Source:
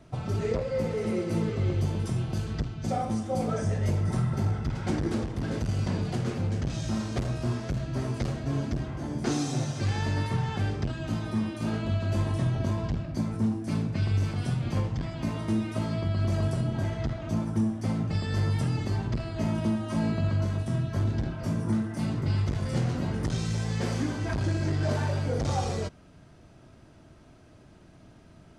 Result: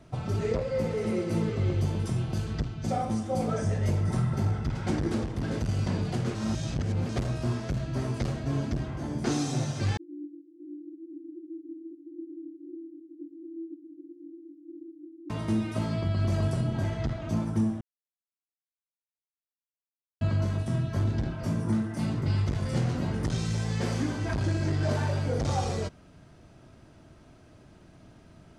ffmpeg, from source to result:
-filter_complex "[0:a]asettb=1/sr,asplit=3[a][b][c];[a]atrim=end=9.974[d];[b]atrim=start=9.97:end=15.3,asetpts=PTS-STARTPTS,afade=t=in:d=0.004:c=qsin,afade=t=out:st=5.326:d=0.004:c=qsin,asuperpass=centerf=320:order=20:qfactor=4.4[e];[c]atrim=start=15.296[f];[d][e]acrossfade=d=0.004:c1=hsin:c2=qsin[g];[g][f]acrossfade=d=0.004:c1=qsin:c2=hsin,asplit=5[h][i][j][k][l];[h]atrim=end=6.352[m];[i]atrim=start=6.348:end=7.092,asetpts=PTS-STARTPTS,areverse[n];[j]atrim=start=7.088:end=17.81,asetpts=PTS-STARTPTS,afade=t=out:st=10.718:d=0.004:c=hsin[o];[k]atrim=start=17.81:end=20.21,asetpts=PTS-STARTPTS,volume=0[p];[l]atrim=start=20.21,asetpts=PTS-STARTPTS,afade=t=in:d=0.004:c=hsin[q];[m][n]acrossfade=d=0.004:c1=hsin:c2=hsin[r];[o][p][q]concat=n=3:v=0:a=1[s];[r][s]acrossfade=d=0.004:c1=hsin:c2=hsin"

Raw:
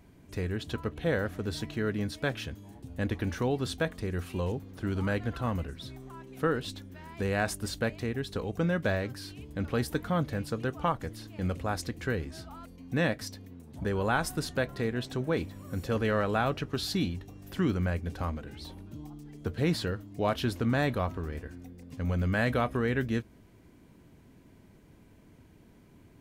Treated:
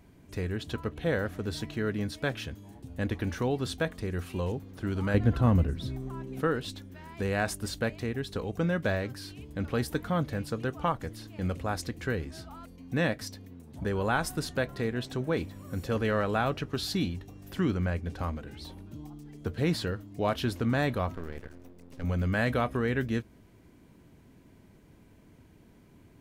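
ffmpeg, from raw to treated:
-filter_complex "[0:a]asettb=1/sr,asplit=3[a][b][c];[a]atrim=end=5.144[d];[b]atrim=start=5.14:end=6.41,asetpts=PTS-STARTPTS,afade=t=in:d=0.004:c=qsin,afade=t=out:st=1.266:d=0.004:c=qsin,lowshelf=f=500:g=10.5[e];[c]atrim=start=6.406[f];[d][e]acrossfade=d=0.004:c1=hsin:c2=qsin[g];[g][f]acrossfade=d=0.004:c1=qsin:c2=hsin,asettb=1/sr,asplit=3[h][i][j];[h]atrim=end=17.664[k];[i]atrim=start=17.66:end=18.19,asetpts=PTS-STARTPTS,afade=t=in:d=0.004:c=qsin,afade=t=out:st=0.526:d=0.004:c=qsin,highshelf=f=11k:g=-9[l];[j]atrim=start=18.186[m];[k][l]acrossfade=d=0.004:c1=hsin:c2=qsin[n];[n][m]acrossfade=d=0.004:c1=qsin:c2=hsin,asettb=1/sr,asplit=3[o][p][q];[o]atrim=end=21.154[r];[p]atrim=start=21.15:end=22.04,asetpts=PTS-STARTPTS,afade=t=in:d=0.004:c=qsin,afade=t=out:st=0.886:d=0.004:c=qsin,aeval=exprs='max(val(0),0)':c=same[s];[q]atrim=start=22.036[t];[r][s]acrossfade=d=0.004:c1=hsin:c2=qsin[u];[u][t]acrossfade=d=0.004:c1=qsin:c2=hsin"

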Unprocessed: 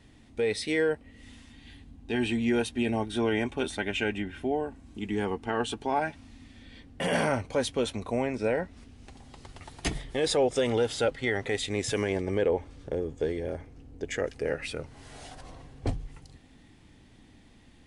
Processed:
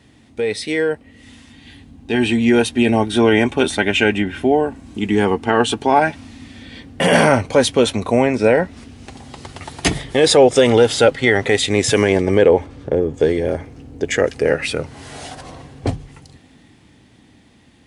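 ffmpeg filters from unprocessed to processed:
-filter_complex "[0:a]asettb=1/sr,asplit=3[a][b][c];[a]atrim=end=12.664[d];[b]atrim=start=12.66:end=13.14,asetpts=PTS-STARTPTS,afade=t=in:d=0.004:c=qsin,afade=t=out:st=0.476:d=0.004:c=qsin,highshelf=f=3.1k:g=-10[e];[c]atrim=start=13.136[f];[d][e]acrossfade=d=0.004:c1=hsin:c2=qsin[g];[g][f]acrossfade=d=0.004:c1=qsin:c2=hsin,dynaudnorm=f=140:g=31:m=7dB,highpass=80,volume=7dB"

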